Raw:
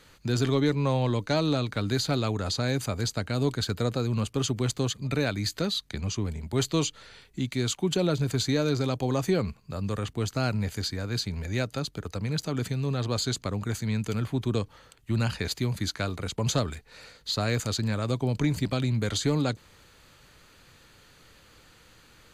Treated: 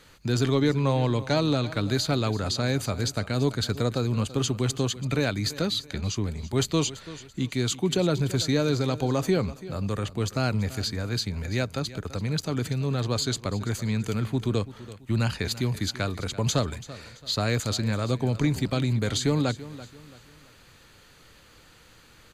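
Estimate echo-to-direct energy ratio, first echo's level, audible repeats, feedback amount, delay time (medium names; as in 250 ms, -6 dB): -16.0 dB, -16.5 dB, 3, 36%, 335 ms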